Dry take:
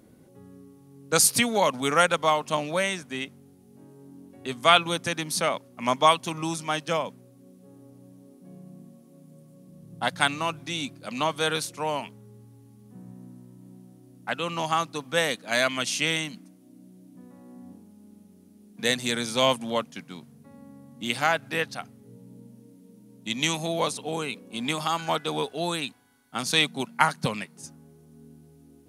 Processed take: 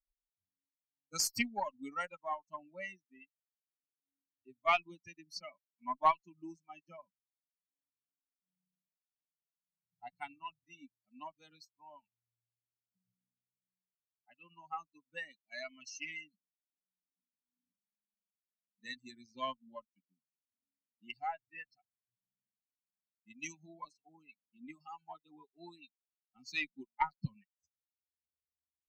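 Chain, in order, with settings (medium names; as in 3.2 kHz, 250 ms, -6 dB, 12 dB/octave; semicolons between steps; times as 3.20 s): expander on every frequency bin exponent 3; static phaser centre 2.3 kHz, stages 8; Chebyshev shaper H 3 -24 dB, 4 -28 dB, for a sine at -11 dBFS; trim -3 dB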